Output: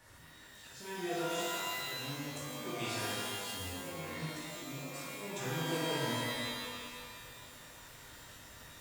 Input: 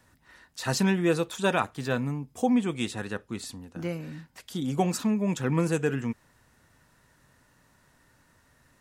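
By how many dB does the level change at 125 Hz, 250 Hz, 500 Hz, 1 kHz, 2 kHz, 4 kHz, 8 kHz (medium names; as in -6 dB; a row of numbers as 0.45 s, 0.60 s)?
-12.5 dB, -15.0 dB, -10.0 dB, -7.0 dB, -5.0 dB, 0.0 dB, -3.5 dB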